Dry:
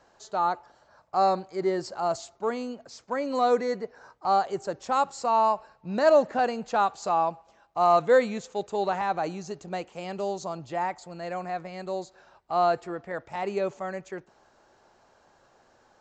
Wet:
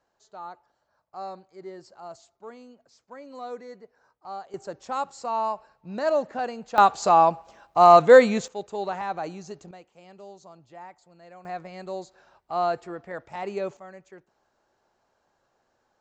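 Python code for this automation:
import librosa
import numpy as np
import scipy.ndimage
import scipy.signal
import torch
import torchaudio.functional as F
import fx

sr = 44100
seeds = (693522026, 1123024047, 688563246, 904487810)

y = fx.gain(x, sr, db=fx.steps((0.0, -14.0), (4.54, -4.5), (6.78, 7.5), (8.48, -3.0), (9.71, -14.5), (11.45, -2.0), (13.77, -10.5)))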